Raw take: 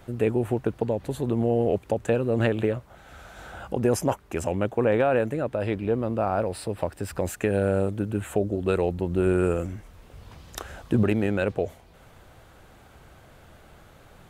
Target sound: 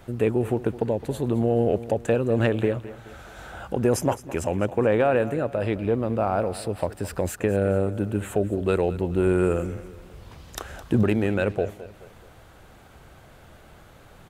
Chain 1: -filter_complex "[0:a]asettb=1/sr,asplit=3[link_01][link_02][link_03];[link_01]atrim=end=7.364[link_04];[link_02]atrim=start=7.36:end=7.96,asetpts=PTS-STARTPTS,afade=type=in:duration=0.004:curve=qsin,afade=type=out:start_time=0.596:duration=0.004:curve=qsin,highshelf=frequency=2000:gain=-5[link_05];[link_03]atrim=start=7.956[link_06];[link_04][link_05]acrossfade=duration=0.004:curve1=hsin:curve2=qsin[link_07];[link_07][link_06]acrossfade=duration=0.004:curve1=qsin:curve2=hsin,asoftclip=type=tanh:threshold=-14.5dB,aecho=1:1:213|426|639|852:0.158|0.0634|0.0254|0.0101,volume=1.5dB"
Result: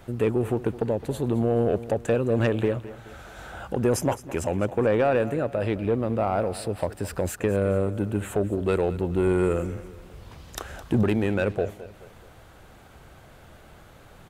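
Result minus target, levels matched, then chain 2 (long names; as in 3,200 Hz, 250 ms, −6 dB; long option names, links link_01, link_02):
soft clipping: distortion +12 dB
-filter_complex "[0:a]asettb=1/sr,asplit=3[link_01][link_02][link_03];[link_01]atrim=end=7.364[link_04];[link_02]atrim=start=7.36:end=7.96,asetpts=PTS-STARTPTS,afade=type=in:duration=0.004:curve=qsin,afade=type=out:start_time=0.596:duration=0.004:curve=qsin,highshelf=frequency=2000:gain=-5[link_05];[link_03]atrim=start=7.956[link_06];[link_04][link_05]acrossfade=duration=0.004:curve1=hsin:curve2=qsin[link_07];[link_07][link_06]acrossfade=duration=0.004:curve1=qsin:curve2=hsin,asoftclip=type=tanh:threshold=-7dB,aecho=1:1:213|426|639|852:0.158|0.0634|0.0254|0.0101,volume=1.5dB"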